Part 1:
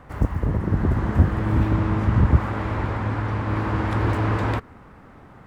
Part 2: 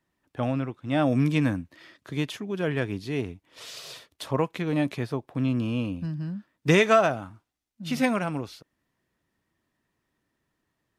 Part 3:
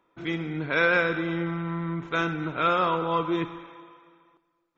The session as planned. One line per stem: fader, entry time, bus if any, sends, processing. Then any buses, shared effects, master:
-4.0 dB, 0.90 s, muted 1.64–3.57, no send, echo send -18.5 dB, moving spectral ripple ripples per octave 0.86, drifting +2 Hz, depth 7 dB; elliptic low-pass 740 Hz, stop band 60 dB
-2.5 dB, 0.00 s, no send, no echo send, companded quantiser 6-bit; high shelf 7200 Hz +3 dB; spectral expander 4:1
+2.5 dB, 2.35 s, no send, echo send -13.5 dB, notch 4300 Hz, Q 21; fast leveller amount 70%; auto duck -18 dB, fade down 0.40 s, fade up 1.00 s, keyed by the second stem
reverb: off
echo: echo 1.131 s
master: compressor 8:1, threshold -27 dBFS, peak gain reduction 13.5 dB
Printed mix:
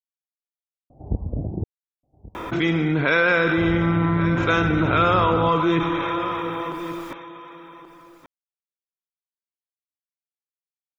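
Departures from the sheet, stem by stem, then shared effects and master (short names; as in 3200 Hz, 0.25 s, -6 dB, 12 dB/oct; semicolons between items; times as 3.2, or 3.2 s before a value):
stem 2: muted; master: missing compressor 8:1, threshold -27 dBFS, peak gain reduction 13.5 dB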